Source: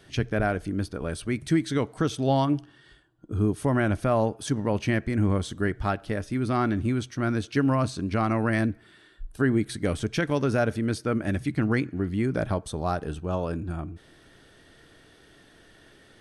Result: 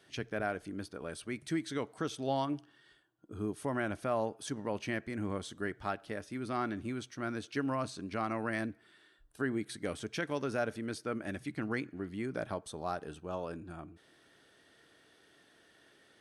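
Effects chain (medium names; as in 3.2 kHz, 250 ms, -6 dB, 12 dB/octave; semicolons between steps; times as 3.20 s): high-pass 320 Hz 6 dB/octave; trim -7.5 dB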